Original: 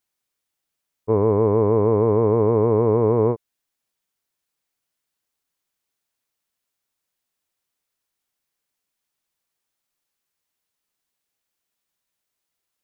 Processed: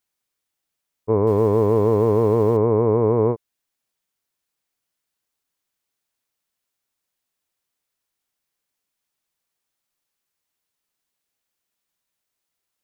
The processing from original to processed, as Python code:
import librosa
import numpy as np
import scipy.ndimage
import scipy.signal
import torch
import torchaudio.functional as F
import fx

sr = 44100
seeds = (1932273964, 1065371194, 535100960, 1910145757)

y = fx.law_mismatch(x, sr, coded='mu', at=(1.27, 2.57))